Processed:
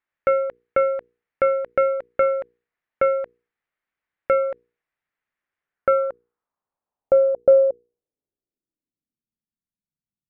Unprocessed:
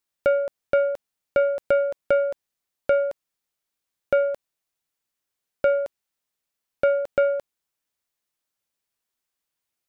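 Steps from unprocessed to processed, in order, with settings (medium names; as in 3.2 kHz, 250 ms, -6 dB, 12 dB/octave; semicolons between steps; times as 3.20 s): low-pass sweep 2 kHz -> 200 Hz, 5.32–9.21 s; speed mistake 25 fps video run at 24 fps; hum notches 60/120/180/240/300/360/420/480 Hz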